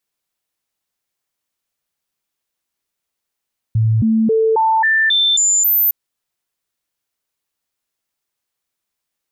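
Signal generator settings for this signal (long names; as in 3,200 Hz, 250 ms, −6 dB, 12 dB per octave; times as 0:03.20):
stepped sweep 111 Hz up, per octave 1, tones 8, 0.27 s, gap 0.00 s −11 dBFS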